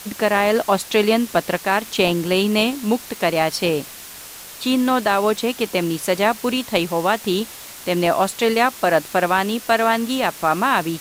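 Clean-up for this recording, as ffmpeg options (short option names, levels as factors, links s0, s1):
-af "adeclick=t=4,afftdn=nr=28:nf=-37"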